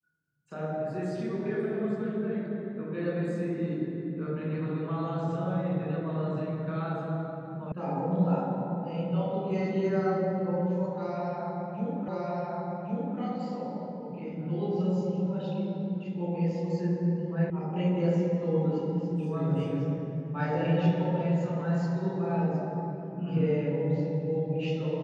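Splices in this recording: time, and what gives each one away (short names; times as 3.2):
7.72 sound cut off
12.08 repeat of the last 1.11 s
17.5 sound cut off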